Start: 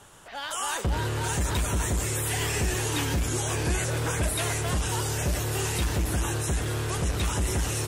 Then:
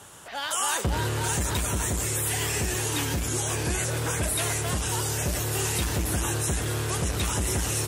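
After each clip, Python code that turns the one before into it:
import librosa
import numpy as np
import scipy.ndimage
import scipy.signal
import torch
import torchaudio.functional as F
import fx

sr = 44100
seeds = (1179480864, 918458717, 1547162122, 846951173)

y = scipy.signal.sosfilt(scipy.signal.butter(2, 60.0, 'highpass', fs=sr, output='sos'), x)
y = fx.high_shelf(y, sr, hz=6200.0, db=5.5)
y = fx.rider(y, sr, range_db=4, speed_s=2.0)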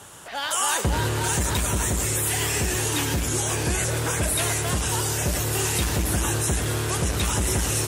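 y = fx.echo_feedback(x, sr, ms=107, feedback_pct=57, wet_db=-15.0)
y = F.gain(torch.from_numpy(y), 3.0).numpy()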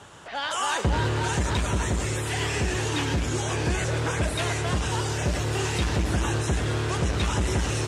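y = fx.air_absorb(x, sr, metres=100.0)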